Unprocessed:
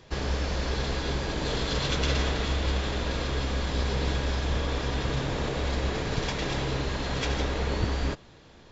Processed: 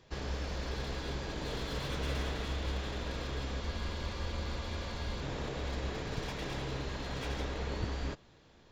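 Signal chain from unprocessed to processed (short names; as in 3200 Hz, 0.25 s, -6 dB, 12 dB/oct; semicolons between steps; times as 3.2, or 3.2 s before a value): spectral freeze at 3.62, 1.59 s; slew limiter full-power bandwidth 80 Hz; gain -8.5 dB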